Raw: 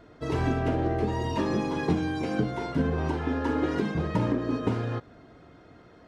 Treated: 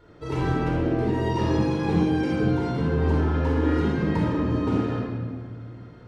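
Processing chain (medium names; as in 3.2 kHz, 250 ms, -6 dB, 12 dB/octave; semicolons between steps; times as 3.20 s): simulated room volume 2100 m³, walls mixed, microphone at 4.4 m; trim -5 dB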